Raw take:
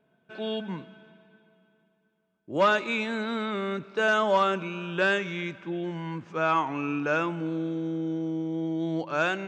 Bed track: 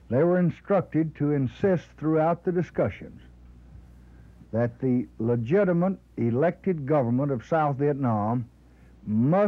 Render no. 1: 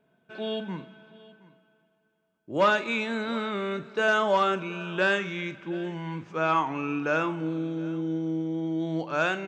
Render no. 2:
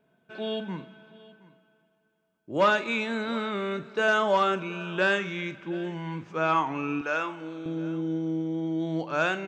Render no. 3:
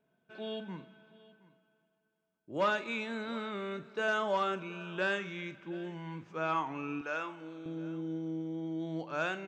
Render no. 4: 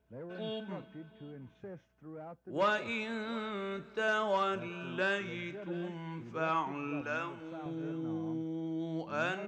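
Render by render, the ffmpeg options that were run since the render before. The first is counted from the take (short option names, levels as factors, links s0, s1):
-filter_complex "[0:a]asplit=2[s0][s1];[s1]adelay=44,volume=0.211[s2];[s0][s2]amix=inputs=2:normalize=0,aecho=1:1:721:0.0841"
-filter_complex "[0:a]asettb=1/sr,asplit=3[s0][s1][s2];[s0]atrim=end=7.014[s3];[s1]atrim=start=7.01:end=7.66,asetpts=PTS-STARTPTS,afade=t=in:d=0.004:c=qsin,afade=t=out:st=0.646:d=0.004:c=qsin,highpass=f=740:p=1[s4];[s2]atrim=start=7.656[s5];[s3][s4]acrossfade=d=0.004:c1=hsin:c2=qsin[s6];[s6][s5]acrossfade=d=0.004:c1=qsin:c2=hsin"
-af "volume=0.398"
-filter_complex "[1:a]volume=0.0631[s0];[0:a][s0]amix=inputs=2:normalize=0"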